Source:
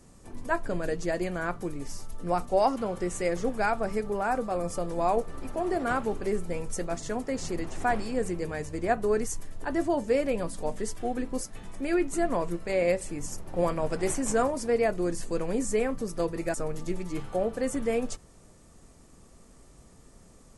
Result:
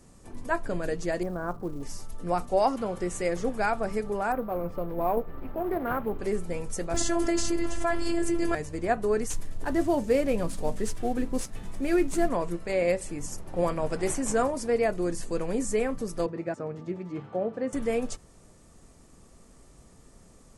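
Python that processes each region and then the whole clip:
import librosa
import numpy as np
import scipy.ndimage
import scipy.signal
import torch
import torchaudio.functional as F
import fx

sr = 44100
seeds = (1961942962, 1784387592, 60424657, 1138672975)

y = fx.chain(x, sr, fx.lowpass(hz=1300.0, slope=24),
    fx.quant_float(bits=4), at=(1.23, 1.83))
y = fx.chain(y, sr, fx.air_absorb(metres=380.0),
    fx.resample_bad(factor=3, down='none', up='hold'),
    fx.doppler_dist(depth_ms=0.21), at=(4.32, 6.19))
y = fx.chain(y, sr, fx.robotise(hz=339.0),
    fx.doubler(ms=20.0, db=-11),
    fx.env_flatten(amount_pct=100), at=(6.94, 8.55))
y = fx.chain(y, sr, fx.cvsd(bps=64000),
    fx.low_shelf(hz=280.0, db=5.5), at=(9.3, 12.29))
y = fx.chain(y, sr, fx.highpass(hz=110.0, slope=24),
    fx.spacing_loss(db_at_10k=27), at=(16.26, 17.73))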